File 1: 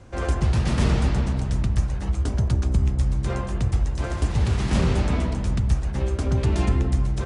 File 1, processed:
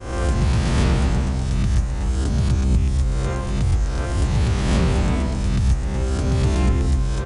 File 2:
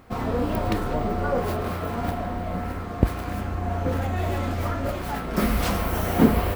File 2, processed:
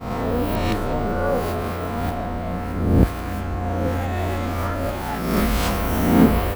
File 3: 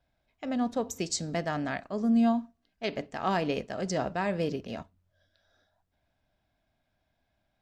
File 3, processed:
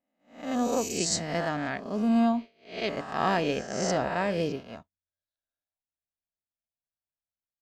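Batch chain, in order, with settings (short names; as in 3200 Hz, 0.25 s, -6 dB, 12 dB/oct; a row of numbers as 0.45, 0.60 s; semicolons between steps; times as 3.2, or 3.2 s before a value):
spectral swells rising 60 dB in 1.12 s; expander -27 dBFS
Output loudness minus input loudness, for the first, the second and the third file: +2.5, +3.5, +2.0 LU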